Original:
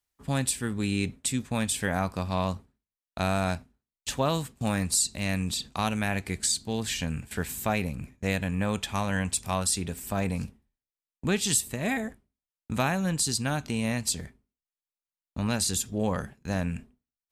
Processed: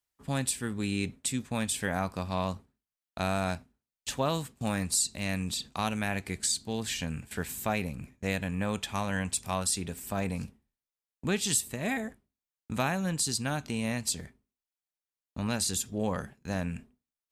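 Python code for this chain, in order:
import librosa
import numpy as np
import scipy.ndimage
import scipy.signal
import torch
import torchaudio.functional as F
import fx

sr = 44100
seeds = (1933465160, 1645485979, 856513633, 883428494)

y = fx.low_shelf(x, sr, hz=76.0, db=-5.5)
y = F.gain(torch.from_numpy(y), -2.5).numpy()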